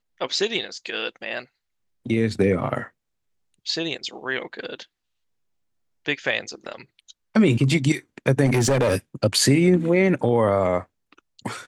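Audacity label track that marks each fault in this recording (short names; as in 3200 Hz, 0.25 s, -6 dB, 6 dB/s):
8.450000	8.960000	clipped -15.5 dBFS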